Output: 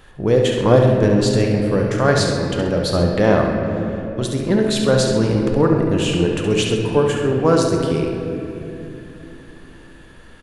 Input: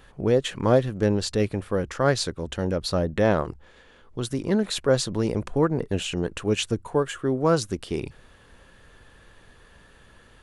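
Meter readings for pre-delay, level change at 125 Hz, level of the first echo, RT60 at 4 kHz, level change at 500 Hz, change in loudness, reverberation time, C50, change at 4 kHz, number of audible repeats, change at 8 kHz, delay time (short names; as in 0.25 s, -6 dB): 6 ms, +9.0 dB, -7.0 dB, 1.8 s, +7.5 dB, +7.5 dB, 2.9 s, 1.5 dB, +6.0 dB, 2, +5.5 dB, 69 ms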